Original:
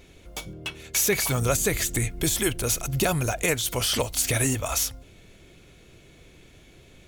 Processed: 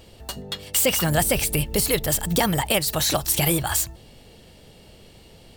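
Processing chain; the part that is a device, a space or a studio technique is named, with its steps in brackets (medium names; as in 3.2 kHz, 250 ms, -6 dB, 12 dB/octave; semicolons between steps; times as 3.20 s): nightcore (tape speed +27%); trim +3 dB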